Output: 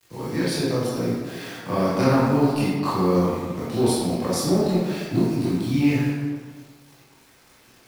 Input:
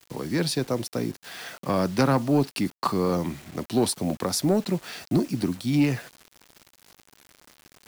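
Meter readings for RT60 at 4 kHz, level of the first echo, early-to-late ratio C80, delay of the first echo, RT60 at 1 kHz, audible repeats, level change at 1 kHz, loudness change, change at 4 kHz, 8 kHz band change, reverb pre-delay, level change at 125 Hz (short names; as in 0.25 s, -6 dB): 0.95 s, none, 1.0 dB, none, 1.6 s, none, +3.0 dB, +3.0 dB, +0.5 dB, 0.0 dB, 17 ms, +4.0 dB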